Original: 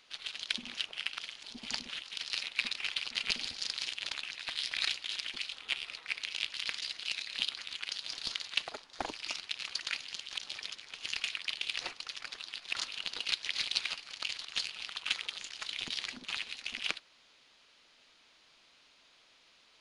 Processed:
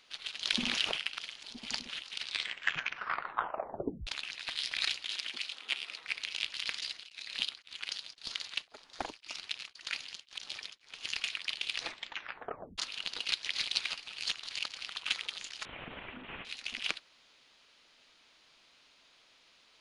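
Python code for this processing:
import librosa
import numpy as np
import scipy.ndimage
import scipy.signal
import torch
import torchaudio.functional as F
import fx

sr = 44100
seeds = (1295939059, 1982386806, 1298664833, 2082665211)

y = fx.env_flatten(x, sr, amount_pct=70, at=(0.43, 0.96), fade=0.02)
y = fx.highpass(y, sr, hz=190.0, slope=24, at=(5.12, 6.0))
y = fx.tremolo_abs(y, sr, hz=1.9, at=(6.84, 11.06), fade=0.02)
y = fx.delta_mod(y, sr, bps=16000, step_db=-41.5, at=(15.65, 16.45))
y = fx.edit(y, sr, fx.tape_stop(start_s=2.1, length_s=1.97),
    fx.tape_stop(start_s=11.8, length_s=0.98),
    fx.reverse_span(start_s=14.07, length_s=0.74), tone=tone)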